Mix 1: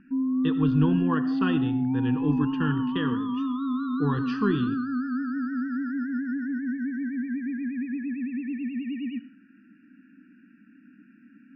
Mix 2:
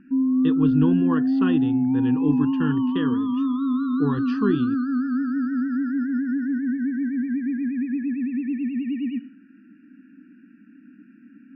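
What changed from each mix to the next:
speech: send off
master: add parametric band 320 Hz +6 dB 1.5 octaves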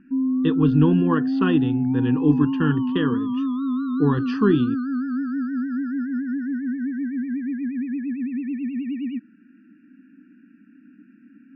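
speech +4.5 dB
reverb: off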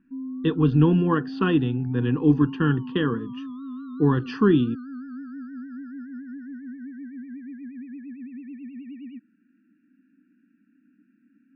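background −11.5 dB

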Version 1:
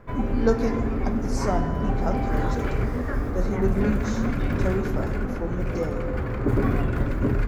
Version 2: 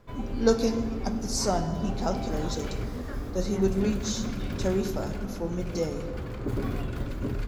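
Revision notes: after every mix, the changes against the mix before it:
background −8.0 dB
master: add high shelf with overshoot 2,600 Hz +8 dB, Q 1.5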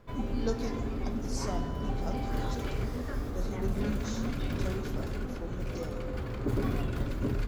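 speech −11.5 dB

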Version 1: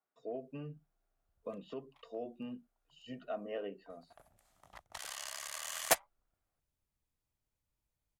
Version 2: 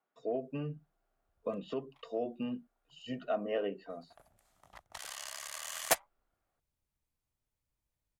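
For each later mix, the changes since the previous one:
speech +6.5 dB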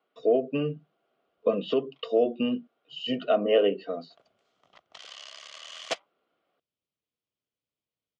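speech +11.0 dB
master: add loudspeaker in its box 190–5,500 Hz, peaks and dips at 460 Hz +4 dB, 880 Hz −9 dB, 1,700 Hz −7 dB, 3,100 Hz +7 dB

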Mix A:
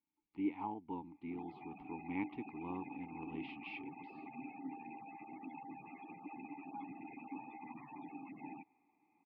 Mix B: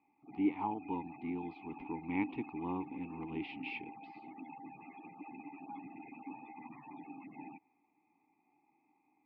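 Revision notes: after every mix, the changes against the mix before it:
speech +5.0 dB
background: entry −1.05 s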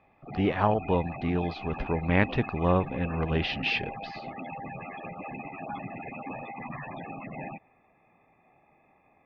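master: remove formant filter u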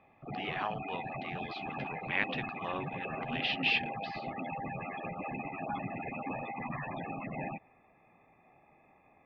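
speech: add resonant band-pass 3,000 Hz, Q 1.1

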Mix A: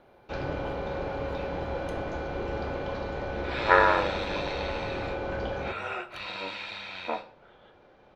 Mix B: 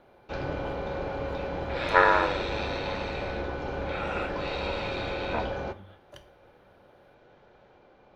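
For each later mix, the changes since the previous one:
second sound: entry −1.75 s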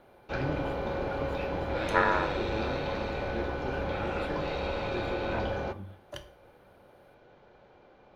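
speech +7.0 dB
second sound −5.5 dB

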